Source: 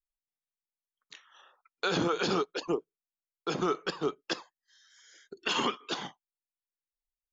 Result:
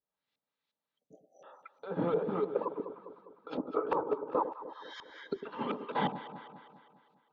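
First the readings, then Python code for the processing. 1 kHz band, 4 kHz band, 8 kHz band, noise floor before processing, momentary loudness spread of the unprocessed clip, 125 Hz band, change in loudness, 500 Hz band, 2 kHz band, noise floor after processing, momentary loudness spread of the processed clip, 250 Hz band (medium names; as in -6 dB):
0.0 dB, -15.0 dB, no reading, under -85 dBFS, 9 LU, -3.0 dB, -3.0 dB, 0.0 dB, -9.5 dB, under -85 dBFS, 20 LU, -2.5 dB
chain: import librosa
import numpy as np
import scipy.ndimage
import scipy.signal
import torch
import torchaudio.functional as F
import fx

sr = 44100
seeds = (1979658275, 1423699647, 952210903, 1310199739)

p1 = fx.fold_sine(x, sr, drive_db=7, ceiling_db=-17.0)
p2 = x + (p1 * librosa.db_to_amplitude(-11.0))
p3 = fx.spec_box(p2, sr, start_s=2.66, length_s=1.77, low_hz=240.0, high_hz=1500.0, gain_db=11)
p4 = scipy.signal.sosfilt(scipy.signal.butter(2, 150.0, 'highpass', fs=sr, output='sos'), p3)
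p5 = fx.peak_eq(p4, sr, hz=3900.0, db=13.5, octaves=0.64)
p6 = fx.over_compress(p5, sr, threshold_db=-27.0, ratio=-0.5)
p7 = fx.spec_erase(p6, sr, start_s=0.98, length_s=0.45, low_hz=790.0, high_hz=5900.0)
p8 = fx.vibrato(p7, sr, rate_hz=0.63, depth_cents=5.8)
p9 = fx.env_lowpass_down(p8, sr, base_hz=1300.0, full_db=-29.0)
p10 = fx.notch_comb(p9, sr, f0_hz=360.0)
p11 = fx.filter_lfo_lowpass(p10, sr, shape='saw_up', hz=2.8, low_hz=580.0, high_hz=3200.0, q=0.9)
p12 = p11 + fx.echo_alternate(p11, sr, ms=101, hz=890.0, feedback_pct=72, wet_db=-9.5, dry=0)
y = fx.dynamic_eq(p12, sr, hz=1300.0, q=2.3, threshold_db=-48.0, ratio=4.0, max_db=-5)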